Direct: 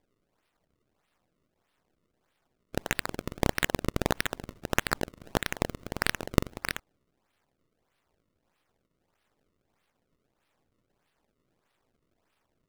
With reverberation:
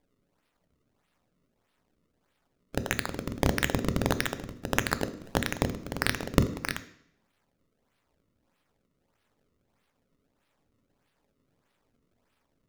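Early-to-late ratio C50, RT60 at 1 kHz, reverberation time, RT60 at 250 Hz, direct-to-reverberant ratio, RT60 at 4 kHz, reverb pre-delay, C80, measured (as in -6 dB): 14.5 dB, 0.70 s, 0.70 s, 0.65 s, 10.5 dB, 0.70 s, 3 ms, 17.5 dB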